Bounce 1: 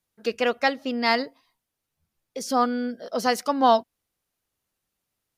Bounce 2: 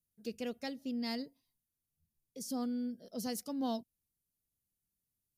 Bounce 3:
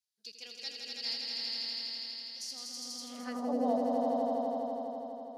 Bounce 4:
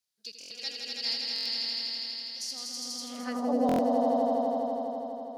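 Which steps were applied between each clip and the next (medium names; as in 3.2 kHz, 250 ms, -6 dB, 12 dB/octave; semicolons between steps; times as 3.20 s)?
FFT filter 180 Hz 0 dB, 1.2 kHz -24 dB, 12 kHz +1 dB; trim -4.5 dB
echo with a slow build-up 82 ms, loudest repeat 5, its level -3 dB; band-pass sweep 4.6 kHz -> 600 Hz, 2.99–3.54 s; trim +8.5 dB
buffer glitch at 0.39/1.34/3.67 s, samples 1024, times 4; trim +5 dB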